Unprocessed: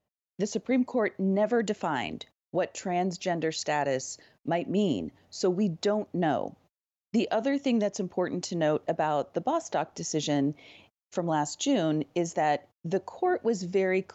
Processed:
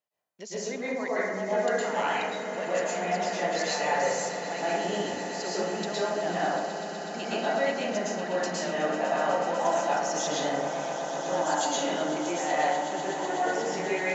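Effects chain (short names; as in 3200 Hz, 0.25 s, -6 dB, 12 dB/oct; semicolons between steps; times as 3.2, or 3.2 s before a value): HPF 1200 Hz 6 dB/oct; on a send: swelling echo 0.124 s, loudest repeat 8, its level -15.5 dB; on the sum: plate-style reverb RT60 1.3 s, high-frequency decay 0.35×, pre-delay 0.1 s, DRR -9.5 dB; gain -3.5 dB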